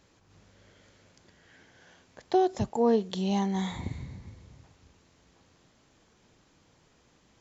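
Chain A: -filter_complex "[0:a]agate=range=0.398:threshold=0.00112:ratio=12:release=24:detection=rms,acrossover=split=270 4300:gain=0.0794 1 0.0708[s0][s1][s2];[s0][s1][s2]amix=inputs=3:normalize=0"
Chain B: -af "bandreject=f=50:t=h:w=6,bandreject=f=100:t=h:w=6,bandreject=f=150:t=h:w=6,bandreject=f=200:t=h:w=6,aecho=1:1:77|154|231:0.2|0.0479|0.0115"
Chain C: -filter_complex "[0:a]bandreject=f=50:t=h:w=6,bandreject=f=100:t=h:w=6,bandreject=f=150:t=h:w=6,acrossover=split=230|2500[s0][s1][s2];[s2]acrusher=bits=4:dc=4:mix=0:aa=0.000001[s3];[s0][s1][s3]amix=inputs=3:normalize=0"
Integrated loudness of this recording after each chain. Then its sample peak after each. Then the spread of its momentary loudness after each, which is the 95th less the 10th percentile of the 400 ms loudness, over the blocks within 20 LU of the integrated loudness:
-30.5 LUFS, -28.5 LUFS, -28.5 LUFS; -15.0 dBFS, -13.5 dBFS, -13.0 dBFS; 15 LU, 17 LU, 16 LU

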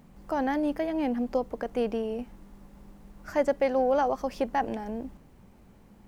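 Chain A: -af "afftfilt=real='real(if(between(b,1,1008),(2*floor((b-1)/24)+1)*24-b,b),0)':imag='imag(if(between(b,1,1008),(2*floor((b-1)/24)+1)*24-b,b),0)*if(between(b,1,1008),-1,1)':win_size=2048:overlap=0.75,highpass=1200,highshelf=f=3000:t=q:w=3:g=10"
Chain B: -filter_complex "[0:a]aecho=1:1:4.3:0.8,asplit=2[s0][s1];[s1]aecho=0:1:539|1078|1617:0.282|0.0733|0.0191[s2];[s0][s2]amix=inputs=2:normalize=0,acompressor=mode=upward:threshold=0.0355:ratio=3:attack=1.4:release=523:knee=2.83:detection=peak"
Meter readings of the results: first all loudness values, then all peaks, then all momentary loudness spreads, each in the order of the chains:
-35.5 LUFS, -27.0 LUFS; -18.0 dBFS, -12.0 dBFS; 17 LU, 16 LU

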